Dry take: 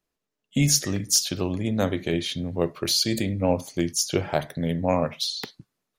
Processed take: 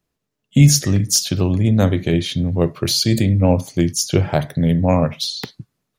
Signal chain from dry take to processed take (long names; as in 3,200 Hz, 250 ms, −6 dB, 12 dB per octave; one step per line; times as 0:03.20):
parametric band 110 Hz +10.5 dB 1.8 octaves
level +4 dB